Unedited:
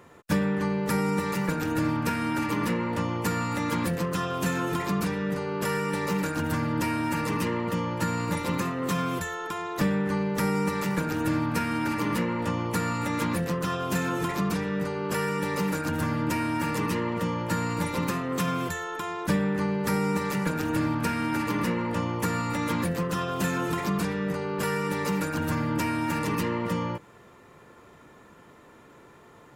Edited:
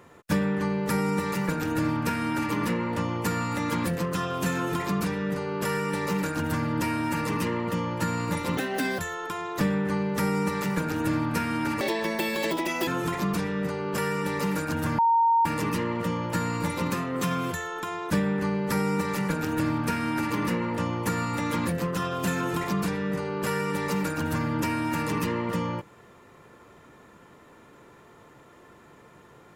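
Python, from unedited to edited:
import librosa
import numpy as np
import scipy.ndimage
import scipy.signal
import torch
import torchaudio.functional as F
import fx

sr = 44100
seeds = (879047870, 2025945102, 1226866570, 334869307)

y = fx.edit(x, sr, fx.speed_span(start_s=8.57, length_s=0.62, speed=1.49),
    fx.speed_span(start_s=12.01, length_s=2.03, speed=1.9),
    fx.bleep(start_s=16.15, length_s=0.47, hz=922.0, db=-17.5), tone=tone)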